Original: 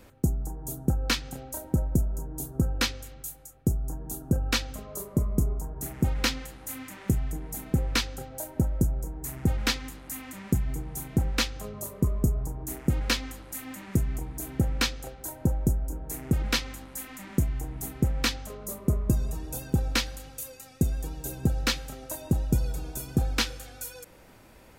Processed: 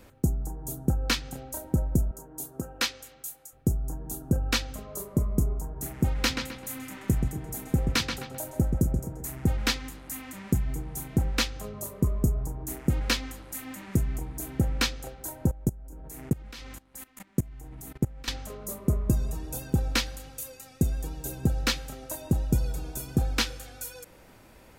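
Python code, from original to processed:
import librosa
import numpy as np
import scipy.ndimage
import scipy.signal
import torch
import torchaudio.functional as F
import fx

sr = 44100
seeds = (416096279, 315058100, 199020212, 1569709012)

y = fx.highpass(x, sr, hz=480.0, slope=6, at=(2.11, 3.53))
y = fx.echo_filtered(y, sr, ms=130, feedback_pct=38, hz=4000.0, wet_db=-5.5, at=(6.29, 9.29), fade=0.02)
y = fx.level_steps(y, sr, step_db=21, at=(15.51, 18.28))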